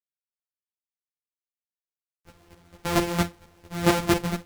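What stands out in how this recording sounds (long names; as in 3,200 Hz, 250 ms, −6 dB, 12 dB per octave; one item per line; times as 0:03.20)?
a buzz of ramps at a fixed pitch in blocks of 256 samples
chopped level 4.4 Hz, depth 65%, duty 15%
a quantiser's noise floor 12 bits, dither none
a shimmering, thickened sound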